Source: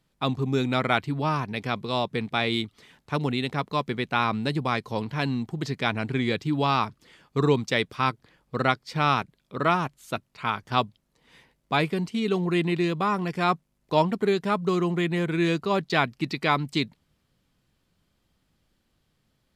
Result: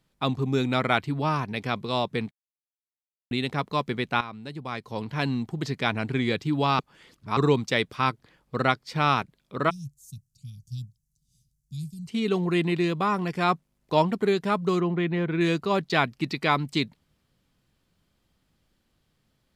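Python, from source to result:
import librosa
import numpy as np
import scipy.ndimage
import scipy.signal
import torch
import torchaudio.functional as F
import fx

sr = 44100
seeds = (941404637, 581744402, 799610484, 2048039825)

y = fx.ellip_bandstop(x, sr, low_hz=140.0, high_hz=6100.0, order=3, stop_db=60, at=(9.69, 12.07), fade=0.02)
y = fx.air_absorb(y, sr, metres=230.0, at=(14.8, 15.41))
y = fx.edit(y, sr, fx.silence(start_s=2.31, length_s=1.0),
    fx.fade_in_from(start_s=4.21, length_s=0.99, curve='qua', floor_db=-13.5),
    fx.reverse_span(start_s=6.79, length_s=0.58), tone=tone)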